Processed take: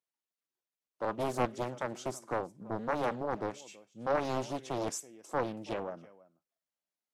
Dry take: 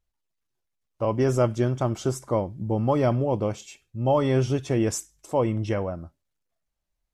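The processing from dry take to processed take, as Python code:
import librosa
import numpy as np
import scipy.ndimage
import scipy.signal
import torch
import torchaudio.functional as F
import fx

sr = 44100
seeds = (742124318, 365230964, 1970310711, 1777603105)

p1 = scipy.signal.sosfilt(scipy.signal.bessel(6, 260.0, 'highpass', norm='mag', fs=sr, output='sos'), x)
p2 = p1 + fx.echo_single(p1, sr, ms=328, db=-21.0, dry=0)
p3 = fx.doppler_dist(p2, sr, depth_ms=0.98)
y = F.gain(torch.from_numpy(p3), -7.5).numpy()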